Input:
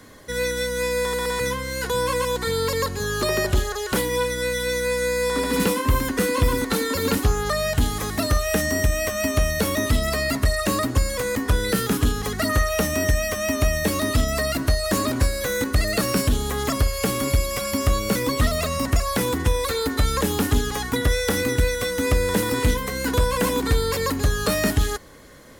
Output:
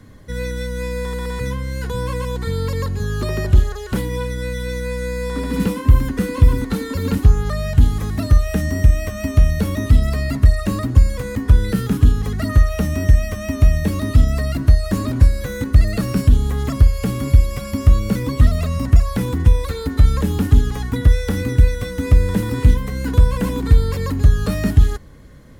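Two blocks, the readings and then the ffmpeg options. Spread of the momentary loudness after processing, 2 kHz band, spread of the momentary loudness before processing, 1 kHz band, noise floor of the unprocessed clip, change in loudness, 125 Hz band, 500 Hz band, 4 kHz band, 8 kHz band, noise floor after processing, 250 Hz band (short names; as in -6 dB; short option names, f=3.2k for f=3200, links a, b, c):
8 LU, -5.0 dB, 3 LU, -5.0 dB, -30 dBFS, +4.0 dB, +9.5 dB, -3.5 dB, -7.0 dB, -8.5 dB, -29 dBFS, +3.0 dB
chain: -af "bass=f=250:g=15,treble=f=4k:g=-4,volume=-5dB"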